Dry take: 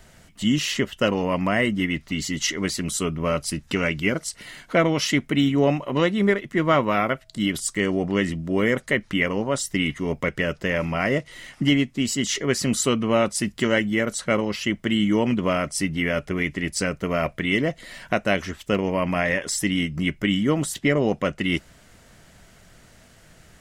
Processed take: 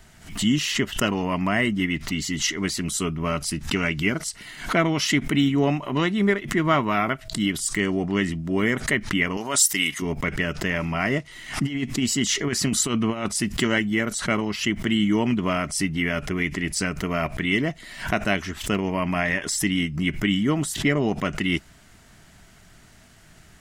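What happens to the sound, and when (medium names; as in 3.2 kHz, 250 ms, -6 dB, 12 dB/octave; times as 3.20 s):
9.37–10.02 s: RIAA curve recording
11.63–13.29 s: compressor with a negative ratio -22 dBFS, ratio -0.5
whole clip: peaking EQ 520 Hz -13 dB 0.26 oct; swell ahead of each attack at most 120 dB/s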